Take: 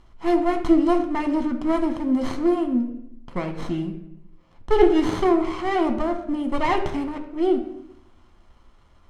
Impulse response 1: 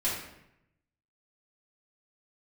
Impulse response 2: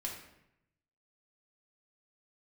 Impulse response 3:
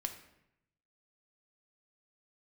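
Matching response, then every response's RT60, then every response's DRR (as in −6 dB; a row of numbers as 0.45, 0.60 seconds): 3; 0.80, 0.80, 0.80 seconds; −9.5, −2.5, 5.0 decibels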